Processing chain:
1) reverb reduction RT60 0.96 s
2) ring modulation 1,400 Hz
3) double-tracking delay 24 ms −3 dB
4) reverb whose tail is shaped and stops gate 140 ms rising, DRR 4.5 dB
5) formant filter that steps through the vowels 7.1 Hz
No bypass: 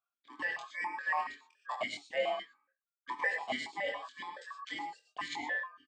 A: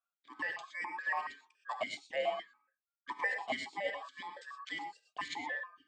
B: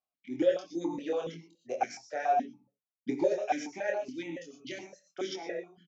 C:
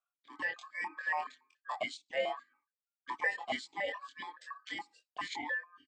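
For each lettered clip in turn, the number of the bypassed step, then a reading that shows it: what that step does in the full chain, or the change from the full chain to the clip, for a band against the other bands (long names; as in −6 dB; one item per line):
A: 3, change in integrated loudness −2.0 LU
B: 2, change in momentary loudness spread +3 LU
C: 4, change in crest factor +1.5 dB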